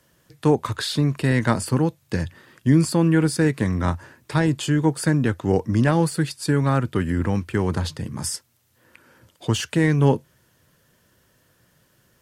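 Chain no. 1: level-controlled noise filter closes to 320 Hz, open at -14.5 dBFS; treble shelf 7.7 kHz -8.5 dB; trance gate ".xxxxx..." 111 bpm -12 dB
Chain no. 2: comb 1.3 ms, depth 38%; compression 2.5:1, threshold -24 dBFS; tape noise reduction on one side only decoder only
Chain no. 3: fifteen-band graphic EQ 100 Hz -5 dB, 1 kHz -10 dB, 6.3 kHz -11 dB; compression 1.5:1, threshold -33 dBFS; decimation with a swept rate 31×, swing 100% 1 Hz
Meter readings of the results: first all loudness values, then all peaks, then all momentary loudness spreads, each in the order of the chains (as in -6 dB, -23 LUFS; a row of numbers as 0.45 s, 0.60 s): -23.5 LUFS, -27.5 LUFS, -29.0 LUFS; -3.5 dBFS, -11.0 dBFS, -13.5 dBFS; 17 LU, 6 LU, 9 LU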